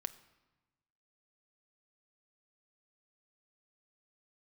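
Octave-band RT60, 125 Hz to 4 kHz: 1.6 s, 1.4 s, 1.1 s, 1.2 s, 1.0 s, 0.85 s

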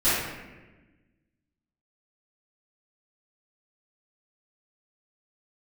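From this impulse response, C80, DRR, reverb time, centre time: 1.5 dB, -17.0 dB, 1.2 s, 91 ms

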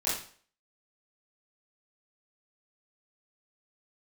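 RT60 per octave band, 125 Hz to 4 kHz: 0.45 s, 0.45 s, 0.45 s, 0.45 s, 0.45 s, 0.45 s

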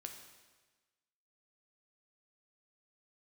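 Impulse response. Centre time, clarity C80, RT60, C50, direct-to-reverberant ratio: 30 ms, 8.0 dB, 1.3 s, 6.5 dB, 3.5 dB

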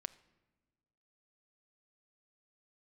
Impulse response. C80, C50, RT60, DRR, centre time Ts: 20.0 dB, 18.0 dB, no single decay rate, 13.5 dB, 3 ms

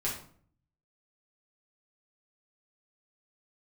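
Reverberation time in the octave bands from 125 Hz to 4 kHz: 0.90 s, 0.70 s, 0.55 s, 0.50 s, 0.40 s, 0.35 s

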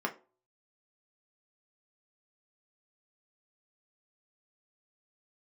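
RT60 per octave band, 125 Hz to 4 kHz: 0.25 s, 0.40 s, 0.40 s, 0.35 s, 0.25 s, 0.20 s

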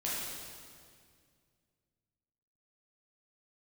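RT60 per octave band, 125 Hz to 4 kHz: 2.9 s, 2.5 s, 2.2 s, 1.9 s, 1.9 s, 1.8 s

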